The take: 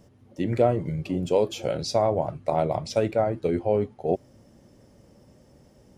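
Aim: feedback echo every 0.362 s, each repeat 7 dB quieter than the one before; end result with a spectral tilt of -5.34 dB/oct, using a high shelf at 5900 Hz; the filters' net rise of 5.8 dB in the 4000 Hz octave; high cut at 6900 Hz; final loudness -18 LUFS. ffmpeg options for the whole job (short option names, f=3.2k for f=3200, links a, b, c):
-af "lowpass=6.9k,equalizer=f=4k:t=o:g=5.5,highshelf=f=5.9k:g=6.5,aecho=1:1:362|724|1086|1448|1810:0.447|0.201|0.0905|0.0407|0.0183,volume=7dB"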